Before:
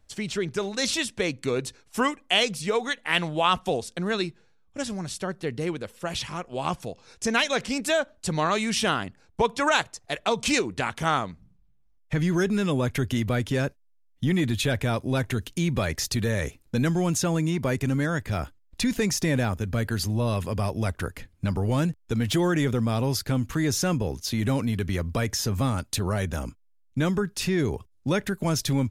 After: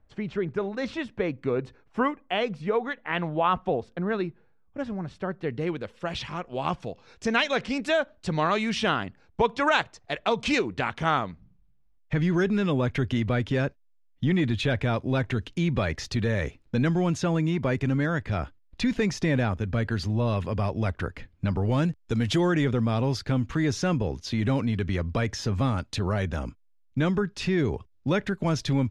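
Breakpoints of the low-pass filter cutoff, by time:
0:05.08 1,600 Hz
0:05.83 3,700 Hz
0:21.60 3,700 Hz
0:22.19 7,200 Hz
0:22.65 4,100 Hz

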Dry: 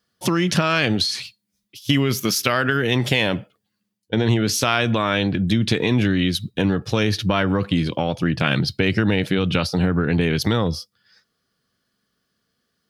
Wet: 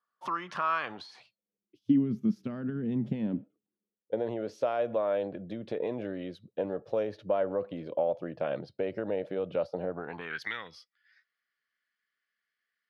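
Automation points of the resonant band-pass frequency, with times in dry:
resonant band-pass, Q 4.6
0:00.89 1,100 Hz
0:02.09 210 Hz
0:03.19 210 Hz
0:04.19 570 Hz
0:09.89 570 Hz
0:10.50 2,000 Hz

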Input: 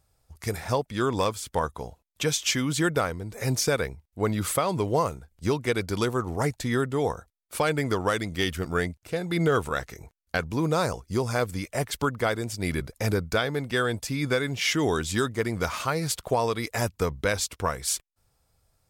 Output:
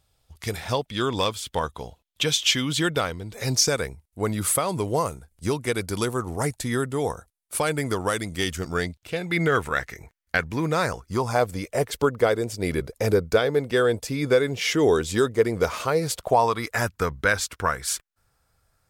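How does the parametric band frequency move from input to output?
parametric band +9.5 dB 0.78 octaves
0:03.35 3,300 Hz
0:03.91 10,000 Hz
0:08.30 10,000 Hz
0:09.41 1,900 Hz
0:10.84 1,900 Hz
0:11.66 460 Hz
0:16.07 460 Hz
0:16.74 1,500 Hz

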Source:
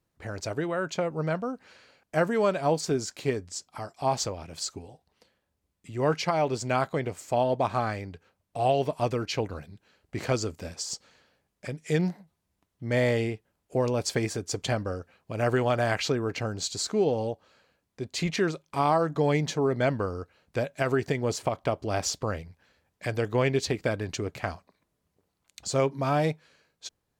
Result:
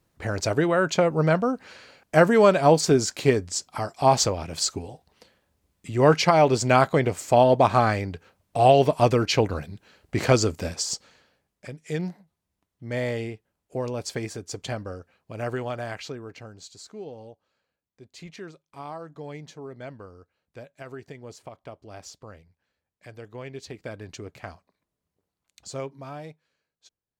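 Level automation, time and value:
0:10.66 +8 dB
0:11.73 −3.5 dB
0:15.34 −3.5 dB
0:16.78 −14 dB
0:23.44 −14 dB
0:24.07 −7 dB
0:25.69 −7 dB
0:26.27 −15 dB

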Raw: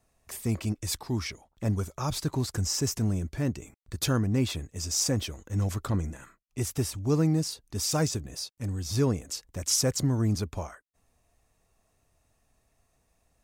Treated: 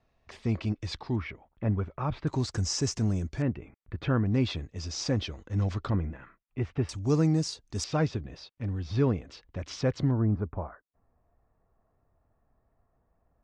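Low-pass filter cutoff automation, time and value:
low-pass filter 24 dB per octave
4,400 Hz
from 0:01.16 2,600 Hz
from 0:02.27 6,700 Hz
from 0:03.42 2,600 Hz
from 0:04.26 4,700 Hz
from 0:05.90 2,700 Hz
from 0:06.89 7,100 Hz
from 0:07.84 3,600 Hz
from 0:10.11 1,500 Hz

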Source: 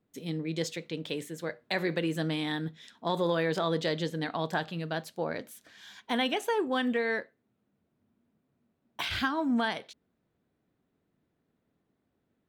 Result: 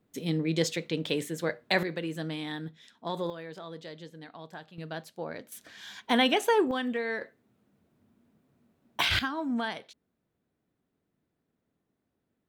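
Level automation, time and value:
+5 dB
from 0:01.83 −4 dB
from 0:03.30 −13.5 dB
from 0:04.78 −4.5 dB
from 0:05.52 +5 dB
from 0:06.71 −2.5 dB
from 0:07.21 +7 dB
from 0:09.19 −3 dB

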